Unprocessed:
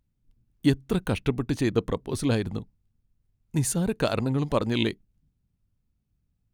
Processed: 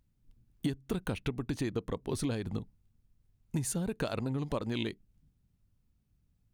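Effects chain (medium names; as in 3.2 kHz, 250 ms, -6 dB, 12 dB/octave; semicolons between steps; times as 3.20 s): compression 10:1, threshold -31 dBFS, peak gain reduction 16 dB; trim +1.5 dB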